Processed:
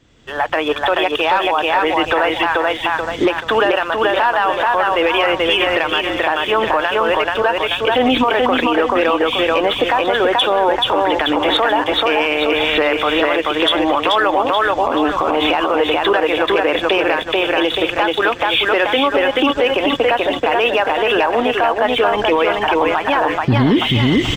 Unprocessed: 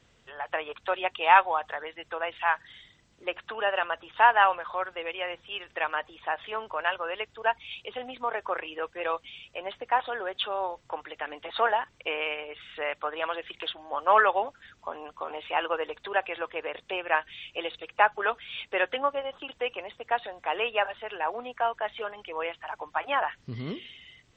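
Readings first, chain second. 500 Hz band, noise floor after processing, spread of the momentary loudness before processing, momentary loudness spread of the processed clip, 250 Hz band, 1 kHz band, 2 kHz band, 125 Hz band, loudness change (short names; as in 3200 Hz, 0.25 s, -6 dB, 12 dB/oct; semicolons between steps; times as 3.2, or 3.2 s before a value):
+16.5 dB, -26 dBFS, 15 LU, 2 LU, +26.5 dB, +11.0 dB, +12.5 dB, n/a, +14.0 dB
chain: recorder AGC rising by 27 dB/s; low shelf 260 Hz +5 dB; small resonant body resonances 300/3400 Hz, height 10 dB, ringing for 45 ms; on a send: feedback echo 0.433 s, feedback 36%, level -3.5 dB; on the sum: sample leveller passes 1; limiter -12 dBFS, peak gain reduction 9.5 dB; gain +5.5 dB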